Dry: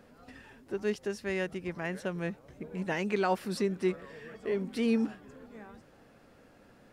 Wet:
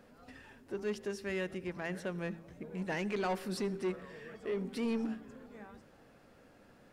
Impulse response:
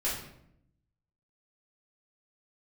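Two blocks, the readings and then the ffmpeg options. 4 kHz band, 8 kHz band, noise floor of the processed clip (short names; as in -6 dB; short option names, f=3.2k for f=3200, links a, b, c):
-3.5 dB, -2.5 dB, -61 dBFS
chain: -filter_complex "[0:a]bandreject=f=55.63:t=h:w=4,bandreject=f=111.26:t=h:w=4,bandreject=f=166.89:t=h:w=4,bandreject=f=222.52:t=h:w=4,bandreject=f=278.15:t=h:w=4,bandreject=f=333.78:t=h:w=4,bandreject=f=389.41:t=h:w=4,bandreject=f=445.04:t=h:w=4,asoftclip=type=tanh:threshold=-26dB,asplit=2[a][b];[1:a]atrim=start_sample=2205,asetrate=33075,aresample=44100,adelay=70[c];[b][c]afir=irnorm=-1:irlink=0,volume=-28.5dB[d];[a][d]amix=inputs=2:normalize=0,volume=-2dB"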